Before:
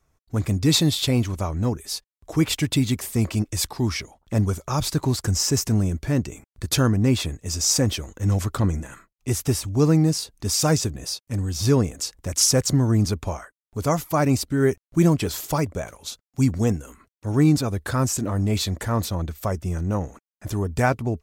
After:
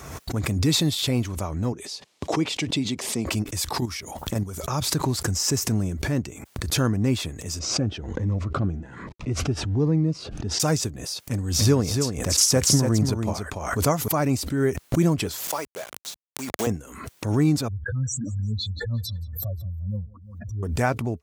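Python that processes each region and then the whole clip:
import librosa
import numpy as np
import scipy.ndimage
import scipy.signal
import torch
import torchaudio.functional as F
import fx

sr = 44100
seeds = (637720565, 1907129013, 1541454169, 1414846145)

y = fx.chain(x, sr, fx.bandpass_edges(low_hz=190.0, high_hz=5700.0),
    fx.peak_eq(hz=1500.0, db=-7.0, octaves=1.0), at=(1.72, 3.26))
y = fx.chain(y, sr, fx.high_shelf(hz=8700.0, db=10.0),
    fx.level_steps(step_db=10), at=(3.78, 4.6))
y = fx.chain(y, sr, fx.law_mismatch(coded='mu'),
    fx.spacing_loss(db_at_10k=32),
    fx.notch_cascade(direction='rising', hz=1.2), at=(7.59, 10.6))
y = fx.chain(y, sr, fx.transient(attack_db=5, sustain_db=0),
    fx.echo_single(ms=287, db=-6.0), at=(11.26, 14.08))
y = fx.chain(y, sr, fx.highpass(hz=500.0, slope=12),
    fx.quant_dither(seeds[0], bits=6, dither='none'), at=(15.38, 16.67))
y = fx.chain(y, sr, fx.spec_expand(power=3.9),
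    fx.echo_feedback(ms=175, feedback_pct=50, wet_db=-22.5), at=(17.68, 20.63))
y = scipy.signal.sosfilt(scipy.signal.butter(2, 79.0, 'highpass', fs=sr, output='sos'), y)
y = fx.pre_swell(y, sr, db_per_s=50.0)
y = y * 10.0 ** (-3.0 / 20.0)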